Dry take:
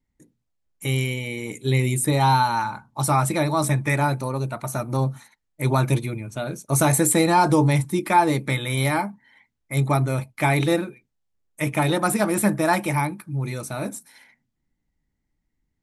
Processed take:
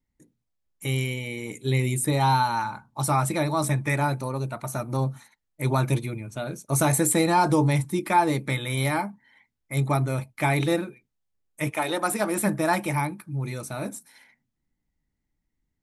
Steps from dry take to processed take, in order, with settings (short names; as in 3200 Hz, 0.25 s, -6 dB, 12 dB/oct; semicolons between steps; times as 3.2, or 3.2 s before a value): 11.69–12.46 HPF 460 Hz -> 180 Hz 12 dB/oct; gain -3 dB